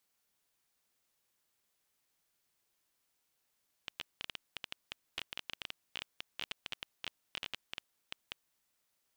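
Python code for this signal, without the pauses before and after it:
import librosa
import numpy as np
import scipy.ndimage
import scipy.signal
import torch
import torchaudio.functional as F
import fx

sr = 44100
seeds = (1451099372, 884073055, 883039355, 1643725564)

y = fx.geiger_clicks(sr, seeds[0], length_s=4.81, per_s=11.0, level_db=-21.5)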